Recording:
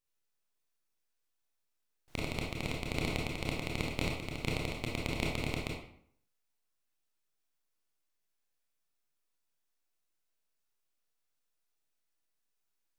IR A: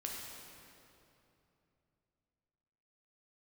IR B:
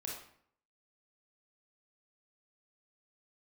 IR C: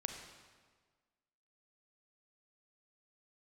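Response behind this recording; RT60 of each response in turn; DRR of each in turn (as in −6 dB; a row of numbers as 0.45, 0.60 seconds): B; 2.9, 0.60, 1.5 seconds; −2.0, −2.5, 4.0 decibels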